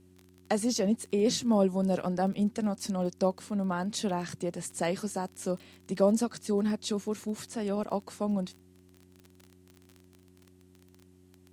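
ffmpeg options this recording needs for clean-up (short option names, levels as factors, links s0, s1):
-af "adeclick=t=4,bandreject=f=91.4:t=h:w=4,bandreject=f=182.8:t=h:w=4,bandreject=f=274.2:t=h:w=4,bandreject=f=365.6:t=h:w=4"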